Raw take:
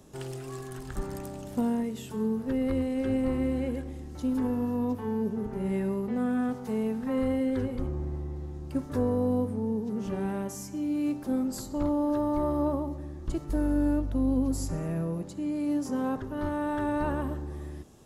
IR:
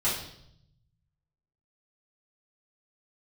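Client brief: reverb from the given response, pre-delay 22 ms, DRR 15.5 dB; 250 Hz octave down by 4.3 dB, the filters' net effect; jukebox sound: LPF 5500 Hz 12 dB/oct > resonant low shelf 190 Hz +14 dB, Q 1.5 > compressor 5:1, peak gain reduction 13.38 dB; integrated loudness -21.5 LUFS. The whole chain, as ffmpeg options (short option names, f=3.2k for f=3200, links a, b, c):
-filter_complex "[0:a]equalizer=f=250:t=o:g=-7,asplit=2[a][b];[1:a]atrim=start_sample=2205,adelay=22[c];[b][c]afir=irnorm=-1:irlink=0,volume=-25.5dB[d];[a][d]amix=inputs=2:normalize=0,lowpass=5.5k,lowshelf=f=190:t=q:w=1.5:g=14,acompressor=threshold=-25dB:ratio=5,volume=9dB"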